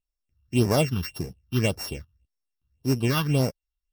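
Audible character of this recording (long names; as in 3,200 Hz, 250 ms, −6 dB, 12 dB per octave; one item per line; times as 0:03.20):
a buzz of ramps at a fixed pitch in blocks of 16 samples
phaser sweep stages 6, 1.8 Hz, lowest notch 560–3,100 Hz
MP3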